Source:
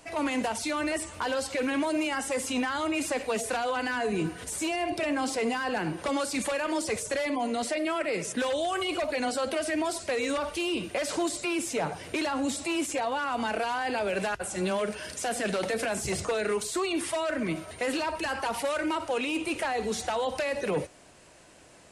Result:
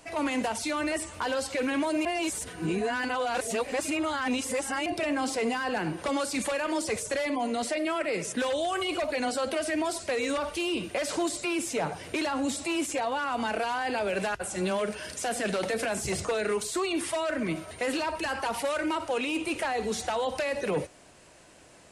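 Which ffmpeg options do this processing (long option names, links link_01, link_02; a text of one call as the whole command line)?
ffmpeg -i in.wav -filter_complex "[0:a]asplit=3[link_01][link_02][link_03];[link_01]atrim=end=2.052[link_04];[link_02]atrim=start=2.048:end=4.862,asetpts=PTS-STARTPTS,areverse[link_05];[link_03]atrim=start=4.858[link_06];[link_04][link_05]acrossfade=duration=0.004:curve1=hsin:curve2=hsin[link_07];[link_07][link_06]acrossfade=duration=0.004:curve1=hsin:curve2=hsin" out.wav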